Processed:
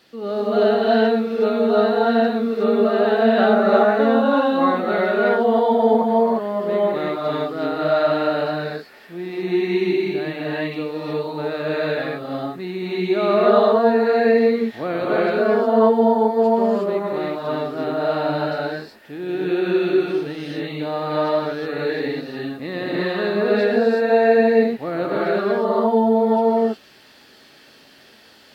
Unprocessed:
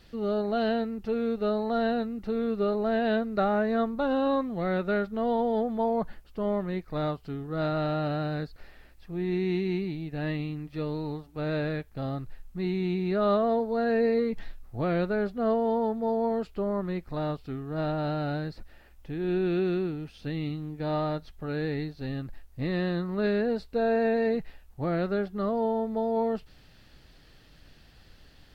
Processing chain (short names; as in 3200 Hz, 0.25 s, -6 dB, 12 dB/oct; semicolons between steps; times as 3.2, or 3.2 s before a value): HPF 280 Hz 12 dB/oct; non-linear reverb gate 0.39 s rising, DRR -6.5 dB; gain +4 dB